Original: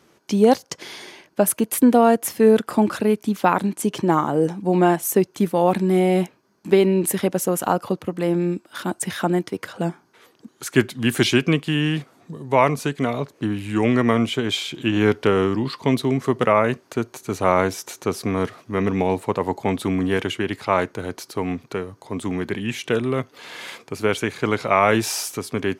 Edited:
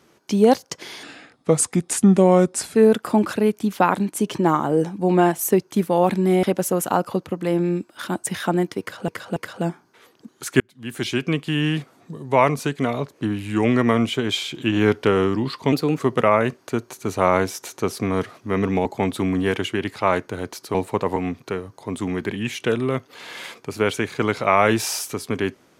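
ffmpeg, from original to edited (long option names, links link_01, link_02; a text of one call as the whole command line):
ffmpeg -i in.wav -filter_complex "[0:a]asplit=12[link_01][link_02][link_03][link_04][link_05][link_06][link_07][link_08][link_09][link_10][link_11][link_12];[link_01]atrim=end=1.034[link_13];[link_02]atrim=start=1.03:end=2.39,asetpts=PTS-STARTPTS,asetrate=34839,aresample=44100[link_14];[link_03]atrim=start=2.386:end=6.072[link_15];[link_04]atrim=start=7.188:end=9.842[link_16];[link_05]atrim=start=9.558:end=9.842[link_17];[link_06]atrim=start=9.558:end=10.8,asetpts=PTS-STARTPTS,afade=type=out:start_time=1.238:duration=0.004:curve=hsin[link_18];[link_07]atrim=start=10.8:end=15.924,asetpts=PTS-STARTPTS,afade=type=in:duration=1.07[link_19];[link_08]atrim=start=15.92:end=16.23,asetpts=PTS-STARTPTS,asetrate=50274,aresample=44100,atrim=end_sample=11992,asetpts=PTS-STARTPTS[link_20];[link_09]atrim=start=16.226:end=19.092[link_21];[link_10]atrim=start=19.508:end=21.402[link_22];[link_11]atrim=start=19.088:end=19.512[link_23];[link_12]atrim=start=21.398[link_24];[link_13][link_14]acrossfade=duration=0.004:curve1=hsin:curve2=hsin[link_25];[link_25][link_15]acrossfade=duration=0.004:curve1=hsin:curve2=hsin[link_26];[link_26][link_16]acrossfade=duration=0.004:curve1=hsin:curve2=hsin[link_27];[link_27][link_17]acrossfade=duration=0.004:curve1=hsin:curve2=hsin[link_28];[link_18][link_19]concat=n=2:v=0:a=1[link_29];[link_28][link_29]acrossfade=duration=0.004:curve1=hsin:curve2=hsin[link_30];[link_30][link_20]acrossfade=duration=0.004:curve1=hsin:curve2=hsin[link_31];[link_31][link_21]acrossfade=duration=0.004:curve1=hsin:curve2=hsin[link_32];[link_32][link_22]acrossfade=duration=0.004:curve1=hsin:curve2=hsin[link_33];[link_33][link_23]acrossfade=duration=0.004:curve1=hsin:curve2=hsin[link_34];[link_34][link_24]acrossfade=duration=0.004:curve1=hsin:curve2=hsin" out.wav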